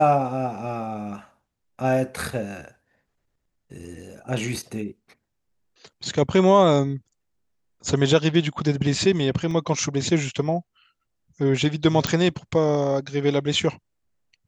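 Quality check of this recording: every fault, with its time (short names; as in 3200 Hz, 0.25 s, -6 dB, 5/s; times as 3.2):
9.51 gap 2.2 ms
12.07 pop -6 dBFS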